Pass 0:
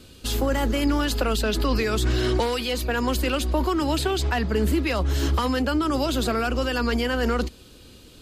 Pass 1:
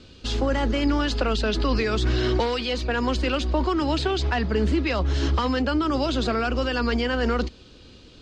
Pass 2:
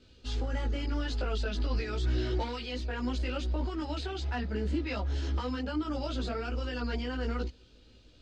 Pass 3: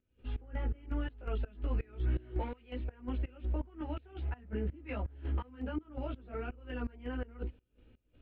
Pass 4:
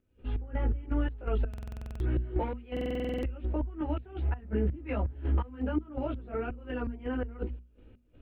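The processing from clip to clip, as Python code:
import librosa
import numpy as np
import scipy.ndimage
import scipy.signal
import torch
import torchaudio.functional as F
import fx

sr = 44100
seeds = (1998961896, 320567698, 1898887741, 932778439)

y1 = scipy.signal.sosfilt(scipy.signal.butter(4, 5900.0, 'lowpass', fs=sr, output='sos'), x)
y2 = fx.chorus_voices(y1, sr, voices=6, hz=0.84, base_ms=18, depth_ms=2.4, mix_pct=50)
y2 = fx.notch(y2, sr, hz=1100.0, q=9.6)
y2 = F.gain(torch.from_numpy(y2), -8.5).numpy()
y3 = scipy.signal.sosfilt(scipy.signal.butter(6, 2700.0, 'lowpass', fs=sr, output='sos'), y2)
y3 = fx.peak_eq(y3, sr, hz=1400.0, db=-4.0, octaves=2.6)
y3 = fx.volume_shaper(y3, sr, bpm=83, per_beat=2, depth_db=-22, release_ms=187.0, shape='slow start')
y3 = F.gain(torch.from_numpy(y3), -2.0).numpy()
y4 = fx.high_shelf(y3, sr, hz=2100.0, db=-9.0)
y4 = fx.hum_notches(y4, sr, base_hz=60, count=4)
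y4 = fx.buffer_glitch(y4, sr, at_s=(1.49, 2.72), block=2048, repeats=10)
y4 = F.gain(torch.from_numpy(y4), 7.5).numpy()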